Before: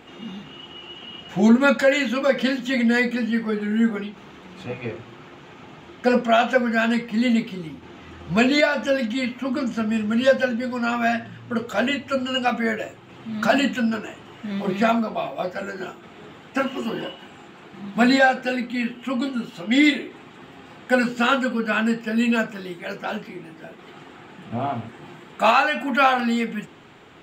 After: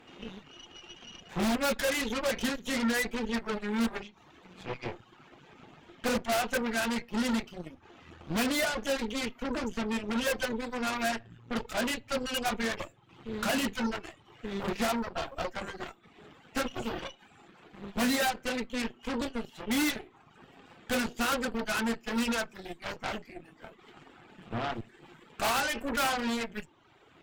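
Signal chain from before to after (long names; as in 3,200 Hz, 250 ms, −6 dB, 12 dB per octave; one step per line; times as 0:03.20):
reverb reduction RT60 0.89 s
wave folding −13.5 dBFS
harmonic generator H 8 −11 dB, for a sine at −13.5 dBFS
level −9 dB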